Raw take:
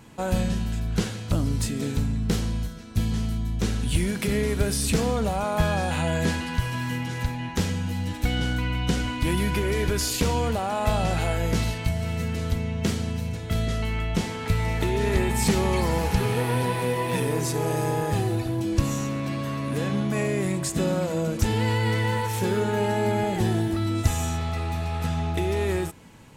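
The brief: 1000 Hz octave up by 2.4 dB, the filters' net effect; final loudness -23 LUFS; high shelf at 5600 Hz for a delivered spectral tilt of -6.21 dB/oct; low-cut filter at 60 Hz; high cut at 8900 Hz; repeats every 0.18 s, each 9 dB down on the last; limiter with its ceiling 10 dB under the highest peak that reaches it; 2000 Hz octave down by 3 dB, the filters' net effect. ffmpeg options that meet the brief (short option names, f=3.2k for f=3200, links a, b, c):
-af "highpass=60,lowpass=8.9k,equalizer=f=1k:t=o:g=4,equalizer=f=2k:t=o:g=-4,highshelf=f=5.6k:g=-8.5,alimiter=limit=-18.5dB:level=0:latency=1,aecho=1:1:180|360|540|720:0.355|0.124|0.0435|0.0152,volume=4.5dB"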